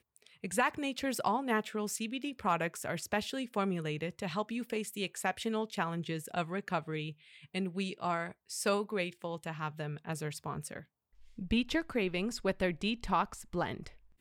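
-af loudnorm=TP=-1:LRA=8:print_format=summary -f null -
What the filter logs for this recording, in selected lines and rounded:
Input Integrated:    -35.0 LUFS
Input True Peak:     -17.0 dBTP
Input LRA:             2.7 LU
Input Threshold:     -45.4 LUFS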